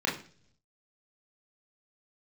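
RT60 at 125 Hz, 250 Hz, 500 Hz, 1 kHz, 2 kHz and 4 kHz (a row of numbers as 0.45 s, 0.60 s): 1.0 s, 0.75 s, 0.55 s, 0.40 s, 0.45 s, 0.55 s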